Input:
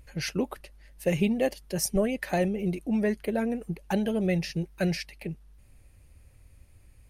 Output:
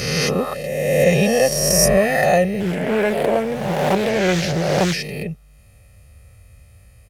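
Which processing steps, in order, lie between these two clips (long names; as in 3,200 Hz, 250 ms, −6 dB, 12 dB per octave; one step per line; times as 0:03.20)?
peak hold with a rise ahead of every peak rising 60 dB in 1.82 s
high-pass filter 69 Hz 12 dB per octave
comb filter 1.6 ms, depth 70%
0:02.60–0:04.98: highs frequency-modulated by the lows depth 0.42 ms
level +5.5 dB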